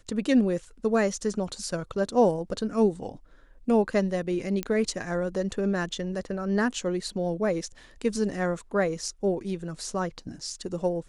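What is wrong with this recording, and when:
0:04.63: click −14 dBFS

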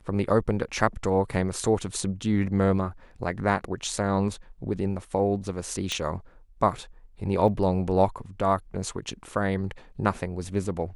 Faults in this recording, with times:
0:05.92: click −14 dBFS
0:07.48: drop-out 2.5 ms

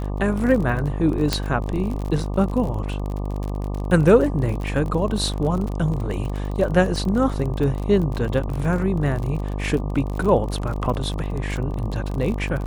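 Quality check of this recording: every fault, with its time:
mains buzz 50 Hz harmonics 24 −26 dBFS
surface crackle 38 per second −27 dBFS
0:01.33: click −5 dBFS

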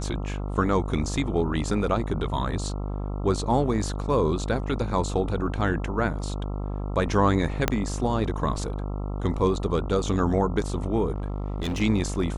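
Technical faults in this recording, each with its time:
mains buzz 50 Hz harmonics 27 −30 dBFS
0:07.68: click −6 dBFS
0:11.14–0:11.82: clipping −24.5 dBFS

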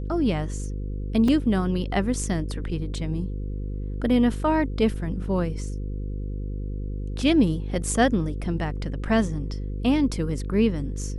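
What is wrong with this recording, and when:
mains buzz 50 Hz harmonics 10 −30 dBFS
0:01.28: drop-out 3.5 ms

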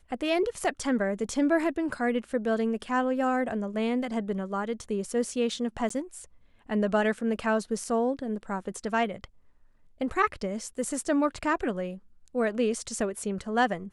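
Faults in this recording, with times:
0:05.89–0:05.90: drop-out 14 ms

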